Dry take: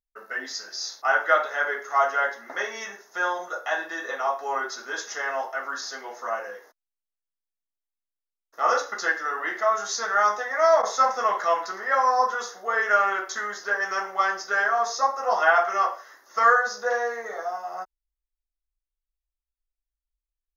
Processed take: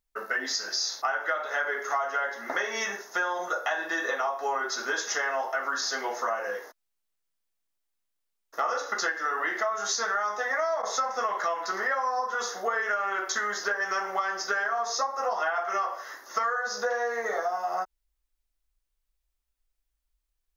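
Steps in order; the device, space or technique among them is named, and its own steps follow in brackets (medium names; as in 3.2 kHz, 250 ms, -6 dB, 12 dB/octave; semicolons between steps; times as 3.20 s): serial compression, leveller first (compression 2:1, threshold -24 dBFS, peak gain reduction 6.5 dB; compression 6:1, threshold -34 dBFS, peak gain reduction 14 dB); trim +8 dB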